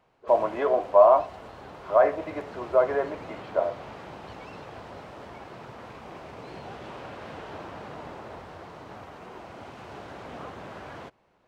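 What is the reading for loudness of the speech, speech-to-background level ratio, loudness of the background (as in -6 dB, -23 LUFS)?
-23.0 LUFS, 19.5 dB, -42.5 LUFS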